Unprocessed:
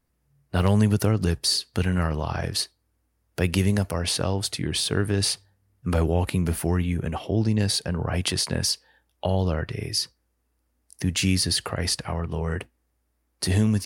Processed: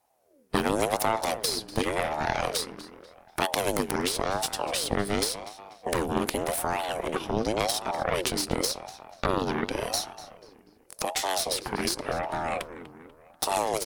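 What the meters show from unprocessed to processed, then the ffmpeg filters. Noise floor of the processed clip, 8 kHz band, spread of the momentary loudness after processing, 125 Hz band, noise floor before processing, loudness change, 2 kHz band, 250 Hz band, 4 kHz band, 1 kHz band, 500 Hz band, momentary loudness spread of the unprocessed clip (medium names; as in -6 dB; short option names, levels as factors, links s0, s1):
-60 dBFS, -2.0 dB, 10 LU, -15.0 dB, -73 dBFS, -3.5 dB, +0.5 dB, -6.5 dB, -4.5 dB, +6.5 dB, +1.0 dB, 8 LU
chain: -filter_complex "[0:a]bass=f=250:g=1,treble=f=4000:g=5,acrossover=split=95|650[s0][s1][s2];[s0]acompressor=threshold=0.02:ratio=4[s3];[s1]acompressor=threshold=0.0178:ratio=4[s4];[s2]acompressor=threshold=0.0282:ratio=4[s5];[s3][s4][s5]amix=inputs=3:normalize=0,aeval=exprs='0.355*(cos(1*acos(clip(val(0)/0.355,-1,1)))-cos(1*PI/2))+0.158*(cos(4*acos(clip(val(0)/0.355,-1,1)))-cos(4*PI/2))':c=same,asplit=2[s6][s7];[s7]adelay=244,lowpass=f=3400:p=1,volume=0.224,asplit=2[s8][s9];[s9]adelay=244,lowpass=f=3400:p=1,volume=0.5,asplit=2[s10][s11];[s11]adelay=244,lowpass=f=3400:p=1,volume=0.5,asplit=2[s12][s13];[s13]adelay=244,lowpass=f=3400:p=1,volume=0.5,asplit=2[s14][s15];[s15]adelay=244,lowpass=f=3400:p=1,volume=0.5[s16];[s6][s8][s10][s12][s14][s16]amix=inputs=6:normalize=0,aeval=exprs='val(0)*sin(2*PI*540*n/s+540*0.45/0.89*sin(2*PI*0.89*n/s))':c=same,volume=1.58"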